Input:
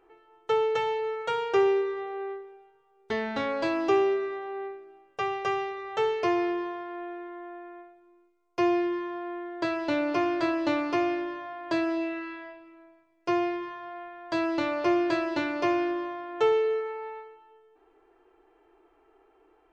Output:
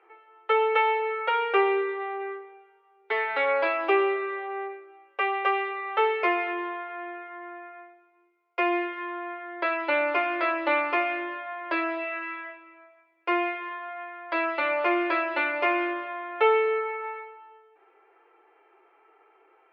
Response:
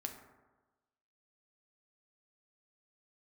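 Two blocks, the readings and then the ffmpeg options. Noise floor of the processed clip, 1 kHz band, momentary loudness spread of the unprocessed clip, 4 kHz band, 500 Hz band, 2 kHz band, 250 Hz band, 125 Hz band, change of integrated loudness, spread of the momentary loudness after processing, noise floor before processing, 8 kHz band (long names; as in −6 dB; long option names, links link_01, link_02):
−63 dBFS, +4.5 dB, 15 LU, +1.0 dB, 0.0 dB, +8.0 dB, −5.0 dB, below −30 dB, +2.0 dB, 15 LU, −65 dBFS, can't be measured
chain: -af "tiltshelf=frequency=1500:gain=-7.5,flanger=delay=6.6:depth=1:regen=-48:speed=1.2:shape=triangular,highpass=frequency=360:width=0.5412,highpass=frequency=360:width=1.3066,equalizer=frequency=360:width_type=q:width=4:gain=6,equalizer=frequency=530:width_type=q:width=4:gain=9,equalizer=frequency=850:width_type=q:width=4:gain=7,equalizer=frequency=1300:width_type=q:width=4:gain=7,equalizer=frequency=2200:width_type=q:width=4:gain=8,lowpass=frequency=2800:width=0.5412,lowpass=frequency=2800:width=1.3066,volume=5.5dB"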